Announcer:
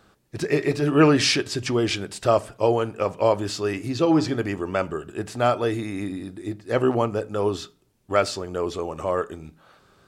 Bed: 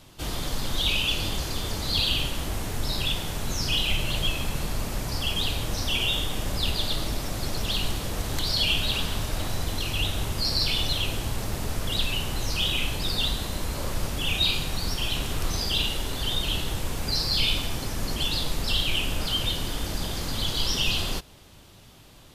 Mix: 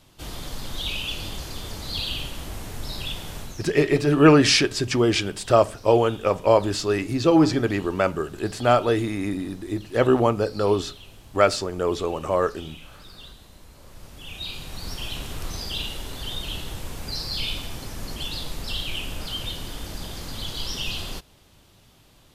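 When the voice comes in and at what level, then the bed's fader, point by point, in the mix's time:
3.25 s, +2.5 dB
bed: 0:03.40 −4.5 dB
0:03.72 −18.5 dB
0:13.79 −18.5 dB
0:14.93 −4.5 dB

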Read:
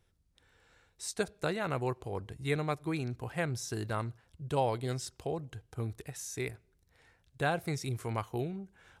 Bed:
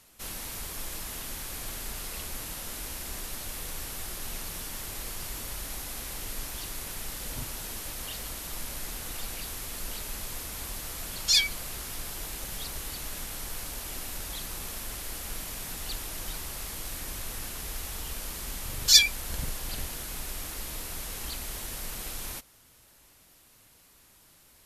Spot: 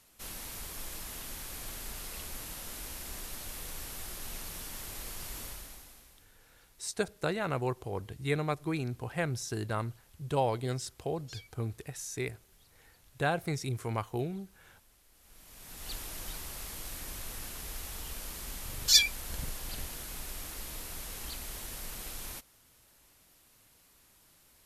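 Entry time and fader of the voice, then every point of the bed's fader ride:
5.80 s, +1.0 dB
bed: 0:05.45 −4.5 dB
0:06.32 −27 dB
0:15.11 −27 dB
0:15.92 −4.5 dB

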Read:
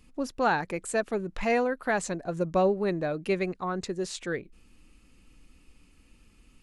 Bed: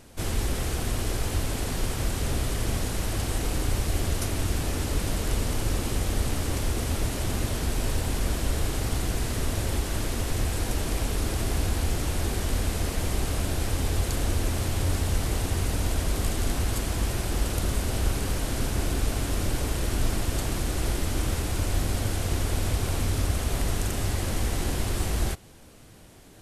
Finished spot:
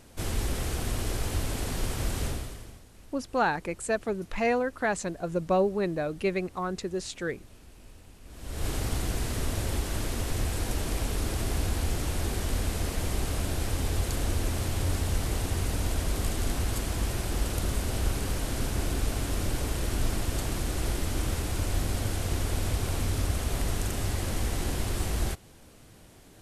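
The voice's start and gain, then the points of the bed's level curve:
2.95 s, −0.5 dB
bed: 0:02.25 −2.5 dB
0:02.85 −25 dB
0:08.23 −25 dB
0:08.67 −2.5 dB

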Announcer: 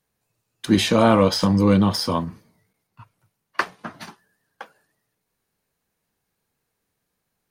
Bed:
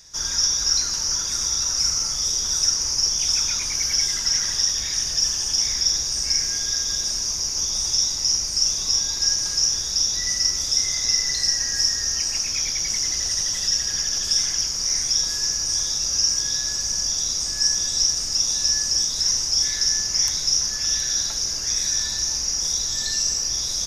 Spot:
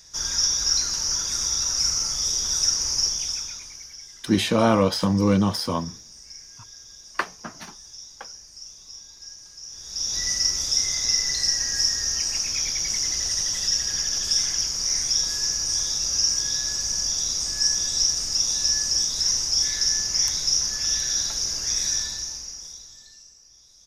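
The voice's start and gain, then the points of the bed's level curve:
3.60 s, −3.0 dB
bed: 0:03.02 −1.5 dB
0:03.98 −21 dB
0:09.62 −21 dB
0:10.17 −1.5 dB
0:21.93 −1.5 dB
0:23.33 −28.5 dB

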